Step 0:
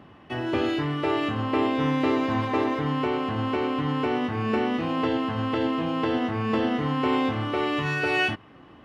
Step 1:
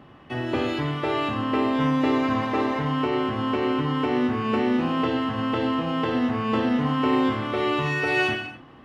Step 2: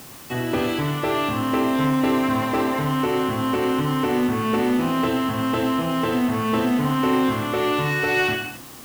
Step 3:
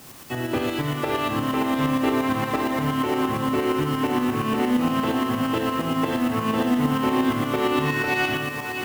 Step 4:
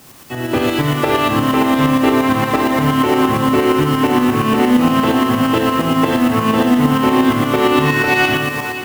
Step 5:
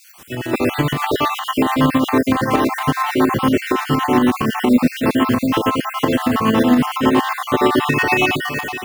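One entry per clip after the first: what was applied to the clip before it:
gated-style reverb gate 300 ms falling, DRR 4 dB
in parallel at -3.5 dB: hard clipper -24 dBFS, distortion -9 dB; on the sum: added noise white -42 dBFS; trim -1 dB
echo that smears into a reverb 617 ms, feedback 43%, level -7 dB; tremolo saw up 8.6 Hz, depth 50%
level rider gain up to 8.5 dB; trim +1.5 dB
random holes in the spectrogram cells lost 43%

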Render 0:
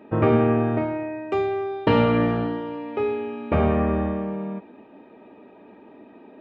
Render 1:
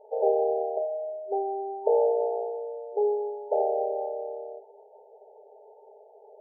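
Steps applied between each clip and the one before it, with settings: FFT band-pass 390–910 Hz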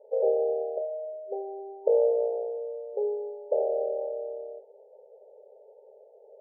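cascade formant filter e; trim +7.5 dB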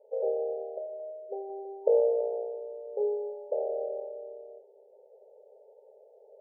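random-step tremolo 2 Hz; bucket-brigade echo 326 ms, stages 1024, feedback 49%, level -13.5 dB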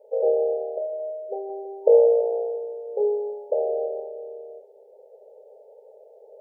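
simulated room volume 610 m³, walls furnished, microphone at 0.62 m; trim +6.5 dB

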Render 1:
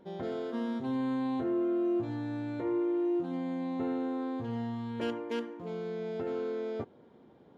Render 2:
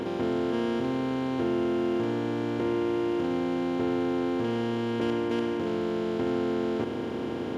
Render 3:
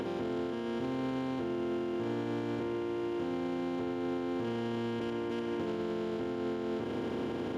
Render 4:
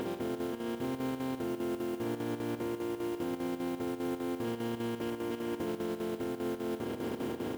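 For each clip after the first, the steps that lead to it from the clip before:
spectral levelling over time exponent 0.2
peak limiter -27.5 dBFS, peak gain reduction 10.5 dB
modulation noise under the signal 21 dB; square tremolo 5 Hz, depth 60%, duty 75%

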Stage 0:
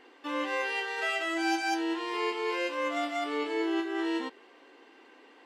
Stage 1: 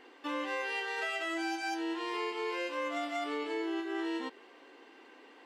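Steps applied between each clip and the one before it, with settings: compression, threshold -32 dBFS, peak gain reduction 8 dB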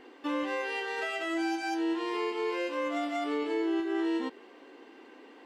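bass shelf 450 Hz +9.5 dB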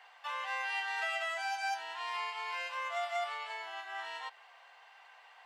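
elliptic high-pass 700 Hz, stop band 60 dB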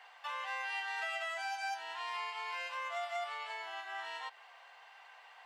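compression 1.5:1, threshold -43 dBFS, peak gain reduction 4.5 dB; trim +1 dB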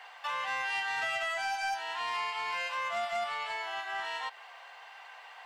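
saturation -32 dBFS, distortion -20 dB; trim +7 dB

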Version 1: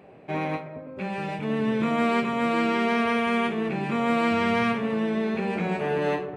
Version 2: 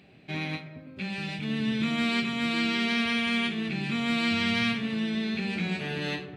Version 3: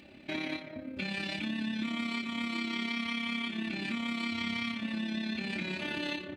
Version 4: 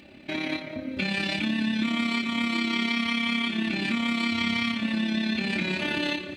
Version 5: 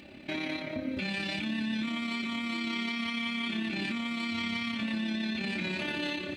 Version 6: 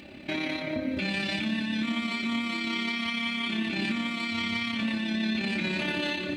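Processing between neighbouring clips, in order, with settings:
graphic EQ 500/1000/4000 Hz -12/-11/+11 dB
comb 3.4 ms, depth 82%; compression 6:1, threshold -33 dBFS, peak gain reduction 12.5 dB; AM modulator 34 Hz, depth 35%; trim +3 dB
level rider gain up to 4 dB; feedback echo behind a high-pass 198 ms, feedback 74%, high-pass 1.8 kHz, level -17.5 dB; trim +4 dB
peak limiter -24.5 dBFS, peak gain reduction 11 dB
reverberation RT60 0.65 s, pre-delay 151 ms, DRR 13.5 dB; trim +3.5 dB

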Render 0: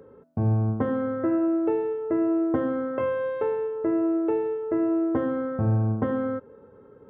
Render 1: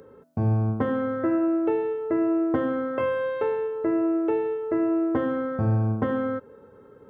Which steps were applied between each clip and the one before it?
treble shelf 2.1 kHz +10 dB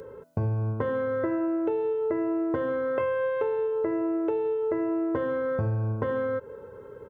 comb 2 ms, depth 55%; compression, threshold -29 dBFS, peak gain reduction 11 dB; trim +4 dB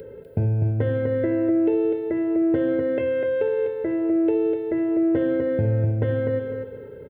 static phaser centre 2.7 kHz, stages 4; on a send: feedback delay 249 ms, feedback 27%, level -5.5 dB; on the sum: trim +5.5 dB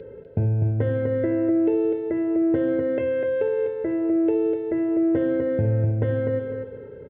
distance through air 190 m

